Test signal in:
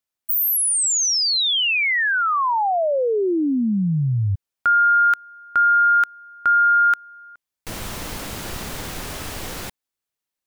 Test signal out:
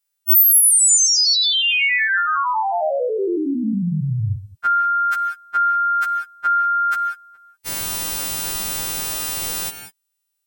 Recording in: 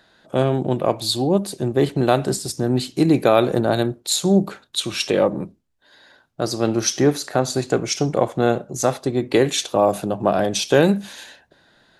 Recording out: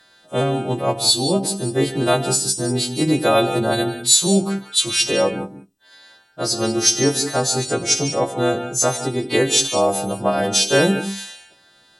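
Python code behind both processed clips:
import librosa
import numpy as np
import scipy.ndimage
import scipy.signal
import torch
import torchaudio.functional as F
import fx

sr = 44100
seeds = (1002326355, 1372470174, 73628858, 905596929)

y = fx.freq_snap(x, sr, grid_st=2)
y = fx.rev_gated(y, sr, seeds[0], gate_ms=210, shape='rising', drr_db=9.0)
y = y * 10.0 ** (-1.0 / 20.0)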